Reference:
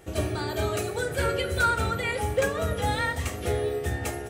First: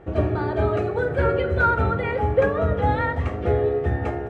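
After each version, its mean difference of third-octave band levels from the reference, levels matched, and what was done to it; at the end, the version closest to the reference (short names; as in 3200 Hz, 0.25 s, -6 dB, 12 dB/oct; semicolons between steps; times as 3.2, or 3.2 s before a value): 9.0 dB: LPF 1400 Hz 12 dB/oct; gain +6.5 dB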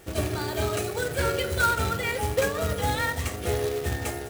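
2.5 dB: companded quantiser 4-bit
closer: second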